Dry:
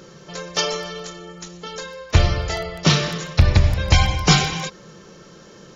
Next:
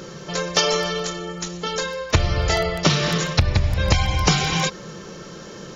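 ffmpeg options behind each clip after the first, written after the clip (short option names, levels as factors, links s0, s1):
-af "acompressor=threshold=0.0891:ratio=12,volume=2.24"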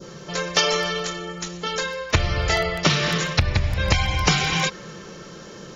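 -af "adynamicequalizer=threshold=0.0158:dfrequency=2100:dqfactor=0.87:tfrequency=2100:tqfactor=0.87:attack=5:release=100:ratio=0.375:range=2.5:mode=boostabove:tftype=bell,volume=0.75"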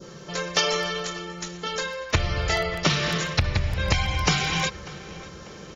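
-filter_complex "[0:a]asplit=2[s0][s1];[s1]adelay=593,lowpass=f=4200:p=1,volume=0.119,asplit=2[s2][s3];[s3]adelay=593,lowpass=f=4200:p=1,volume=0.5,asplit=2[s4][s5];[s5]adelay=593,lowpass=f=4200:p=1,volume=0.5,asplit=2[s6][s7];[s7]adelay=593,lowpass=f=4200:p=1,volume=0.5[s8];[s0][s2][s4][s6][s8]amix=inputs=5:normalize=0,volume=0.708"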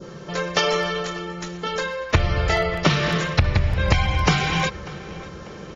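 -af "highshelf=f=3900:g=-11.5,volume=1.78"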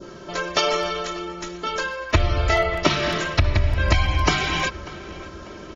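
-af "aecho=1:1:3.1:0.6,volume=0.891"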